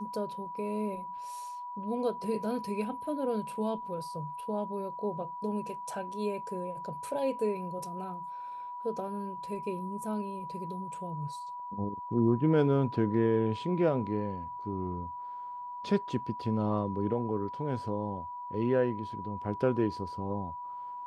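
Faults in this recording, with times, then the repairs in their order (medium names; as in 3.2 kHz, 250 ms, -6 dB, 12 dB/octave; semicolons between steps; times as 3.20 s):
whine 980 Hz -38 dBFS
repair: band-stop 980 Hz, Q 30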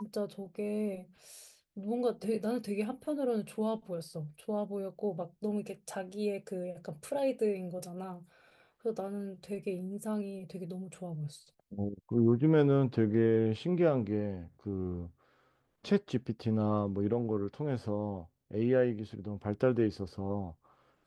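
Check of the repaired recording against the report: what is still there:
nothing left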